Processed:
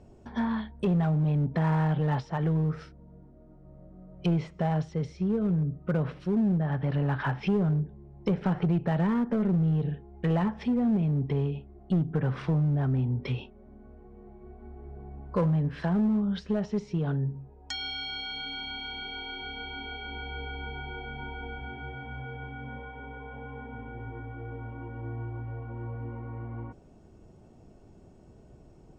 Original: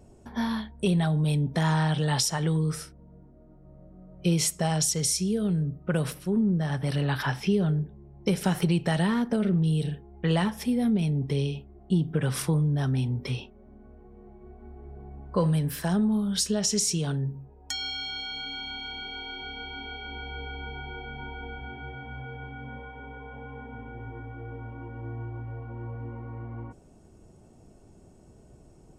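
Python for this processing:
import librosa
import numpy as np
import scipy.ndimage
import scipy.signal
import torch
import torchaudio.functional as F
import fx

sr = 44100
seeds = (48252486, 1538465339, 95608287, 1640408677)

p1 = fx.env_lowpass_down(x, sr, base_hz=1400.0, full_db=-23.5)
p2 = scipy.signal.sosfilt(scipy.signal.butter(2, 4800.0, 'lowpass', fs=sr, output='sos'), p1)
p3 = 10.0 ** (-22.5 / 20.0) * (np.abs((p2 / 10.0 ** (-22.5 / 20.0) + 3.0) % 4.0 - 2.0) - 1.0)
p4 = p2 + (p3 * 10.0 ** (-7.5 / 20.0))
y = p4 * 10.0 ** (-3.0 / 20.0)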